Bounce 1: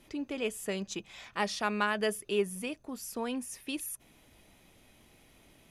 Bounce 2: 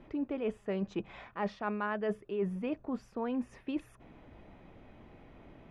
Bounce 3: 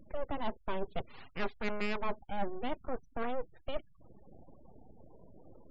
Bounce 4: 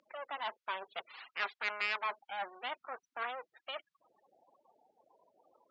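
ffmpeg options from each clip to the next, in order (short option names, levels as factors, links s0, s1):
-af "lowpass=1400,areverse,acompressor=threshold=0.0112:ratio=6,areverse,volume=2.51"
-af "aeval=exprs='abs(val(0))':c=same,afftfilt=real='re*gte(hypot(re,im),0.00316)':imag='im*gte(hypot(re,im),0.00316)':win_size=1024:overlap=0.75,volume=1.26"
-af "asuperpass=centerf=2500:order=4:qfactor=0.53,volume=1.88"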